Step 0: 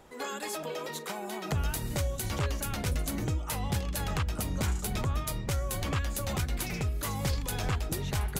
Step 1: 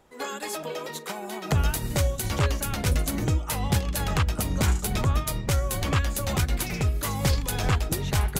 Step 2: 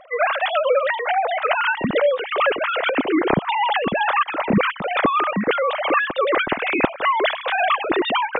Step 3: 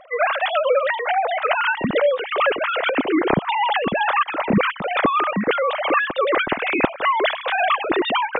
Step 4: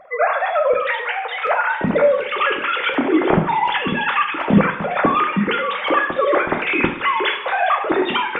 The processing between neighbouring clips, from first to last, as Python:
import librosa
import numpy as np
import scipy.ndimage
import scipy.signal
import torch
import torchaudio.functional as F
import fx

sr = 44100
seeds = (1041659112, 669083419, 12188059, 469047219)

y1 = fx.upward_expand(x, sr, threshold_db=-51.0, expansion=1.5)
y1 = y1 * librosa.db_to_amplitude(8.0)
y2 = fx.sine_speech(y1, sr)
y2 = fx.rider(y2, sr, range_db=10, speed_s=0.5)
y2 = y2 * librosa.db_to_amplitude(5.0)
y3 = y2
y4 = fx.filter_lfo_notch(y3, sr, shape='square', hz=0.68, low_hz=660.0, high_hz=3000.0, q=1.1)
y4 = fx.echo_wet_highpass(y4, sr, ms=412, feedback_pct=60, hz=3400.0, wet_db=-8)
y4 = fx.rev_double_slope(y4, sr, seeds[0], early_s=0.51, late_s=1.7, knee_db=-19, drr_db=3.0)
y4 = y4 * librosa.db_to_amplitude(1.5)